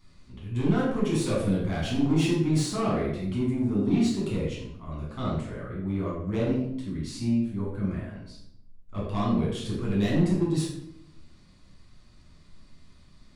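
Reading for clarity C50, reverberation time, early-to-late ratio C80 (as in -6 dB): 2.0 dB, 0.75 s, 5.5 dB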